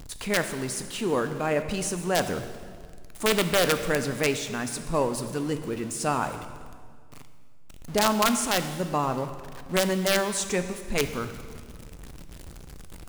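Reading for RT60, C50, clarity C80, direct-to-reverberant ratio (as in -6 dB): 1.9 s, 10.0 dB, 11.0 dB, 8.5 dB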